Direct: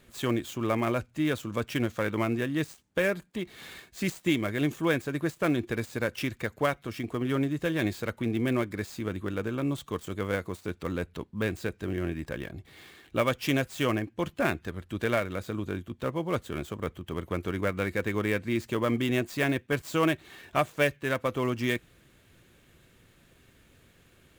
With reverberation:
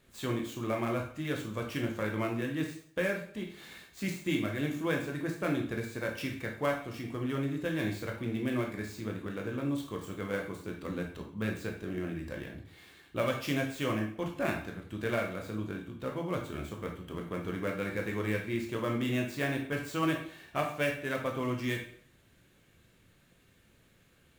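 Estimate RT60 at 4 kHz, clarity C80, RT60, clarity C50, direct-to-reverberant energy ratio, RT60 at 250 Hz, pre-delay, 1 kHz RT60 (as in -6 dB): 0.50 s, 10.5 dB, 0.55 s, 6.5 dB, 1.0 dB, 0.50 s, 6 ms, 0.55 s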